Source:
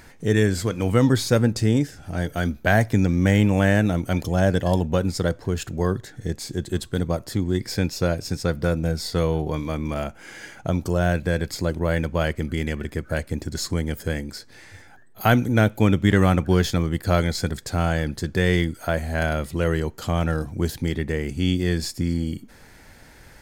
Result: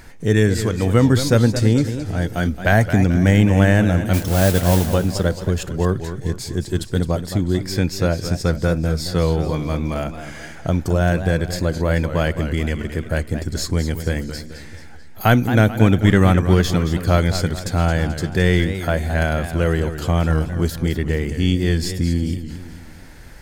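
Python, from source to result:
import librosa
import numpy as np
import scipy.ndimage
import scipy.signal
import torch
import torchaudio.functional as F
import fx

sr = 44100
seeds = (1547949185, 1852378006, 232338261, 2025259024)

y = fx.mod_noise(x, sr, seeds[0], snr_db=11, at=(4.13, 4.94))
y = fx.low_shelf(y, sr, hz=61.0, db=8.5)
y = fx.echo_warbled(y, sr, ms=218, feedback_pct=48, rate_hz=2.8, cents=134, wet_db=-10.5)
y = F.gain(torch.from_numpy(y), 2.5).numpy()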